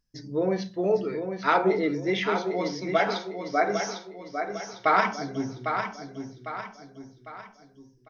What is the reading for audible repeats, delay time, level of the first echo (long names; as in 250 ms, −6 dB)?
4, 802 ms, −7.0 dB